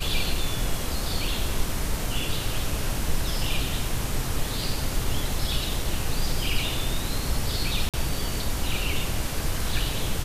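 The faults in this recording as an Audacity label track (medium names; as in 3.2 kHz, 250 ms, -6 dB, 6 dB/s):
7.890000	7.940000	dropout 47 ms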